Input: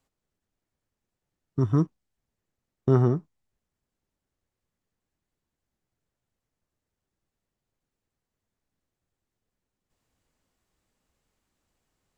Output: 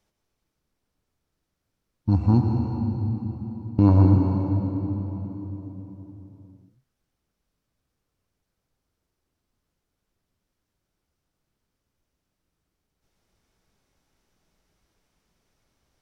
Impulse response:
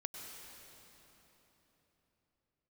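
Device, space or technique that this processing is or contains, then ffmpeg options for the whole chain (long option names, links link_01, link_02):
slowed and reverbed: -filter_complex "[0:a]asetrate=33516,aresample=44100[link_01];[1:a]atrim=start_sample=2205[link_02];[link_01][link_02]afir=irnorm=-1:irlink=0,volume=7dB"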